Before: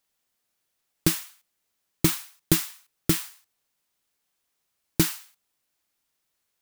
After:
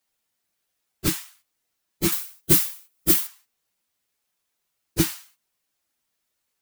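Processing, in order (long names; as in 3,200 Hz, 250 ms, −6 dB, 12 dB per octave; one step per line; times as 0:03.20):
random phases in long frames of 50 ms
0:02.12–0:03.27: high-shelf EQ 8,700 Hz +11 dB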